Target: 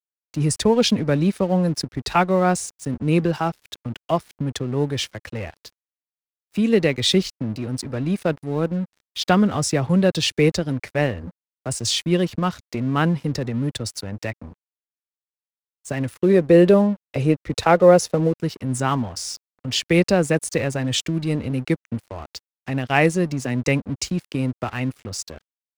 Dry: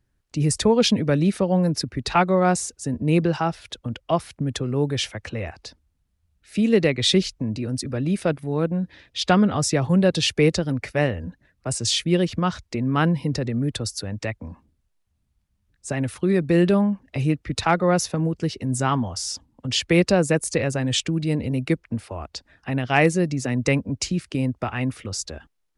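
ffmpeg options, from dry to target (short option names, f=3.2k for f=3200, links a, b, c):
-filter_complex "[0:a]asplit=3[a][b][c];[a]afade=t=out:st=16.22:d=0.02[d];[b]equalizer=f=500:w=1.7:g=10,afade=t=in:st=16.22:d=0.02,afade=t=out:st=18.33:d=0.02[e];[c]afade=t=in:st=18.33:d=0.02[f];[d][e][f]amix=inputs=3:normalize=0,aeval=exprs='sgn(val(0))*max(abs(val(0))-0.00944,0)':c=same,volume=1dB"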